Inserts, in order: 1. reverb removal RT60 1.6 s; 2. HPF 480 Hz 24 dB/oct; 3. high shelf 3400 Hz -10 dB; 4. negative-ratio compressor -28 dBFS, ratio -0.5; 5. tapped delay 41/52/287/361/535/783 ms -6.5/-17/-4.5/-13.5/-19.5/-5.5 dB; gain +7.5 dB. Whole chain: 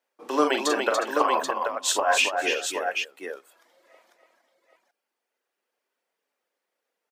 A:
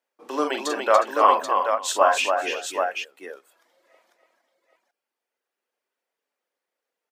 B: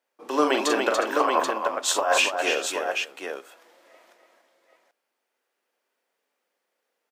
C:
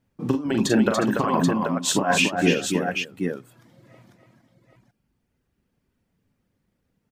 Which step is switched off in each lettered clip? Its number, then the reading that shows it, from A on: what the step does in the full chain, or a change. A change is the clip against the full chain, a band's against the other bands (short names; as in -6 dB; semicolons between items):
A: 4, momentary loudness spread change +3 LU; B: 1, crest factor change -3.0 dB; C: 2, 250 Hz band +11.5 dB